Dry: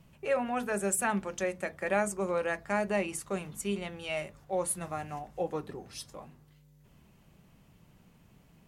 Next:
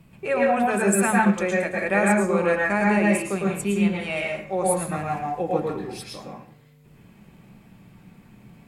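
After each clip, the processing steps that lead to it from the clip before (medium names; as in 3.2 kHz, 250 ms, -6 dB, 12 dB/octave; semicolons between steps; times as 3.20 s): reverberation RT60 0.50 s, pre-delay 102 ms, DRR -2.5 dB; trim +4 dB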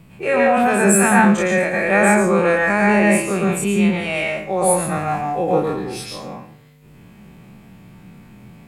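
every event in the spectrogram widened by 60 ms; trim +2.5 dB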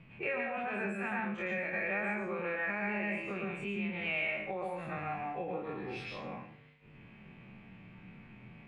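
compression 4:1, threshold -26 dBFS, peak gain reduction 14.5 dB; flange 0.83 Hz, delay 7.5 ms, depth 3.3 ms, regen -65%; resonant low-pass 2.5 kHz, resonance Q 2.6; trim -6.5 dB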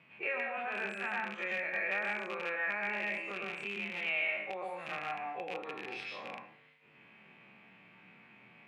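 rattle on loud lows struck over -43 dBFS, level -31 dBFS; frequency weighting A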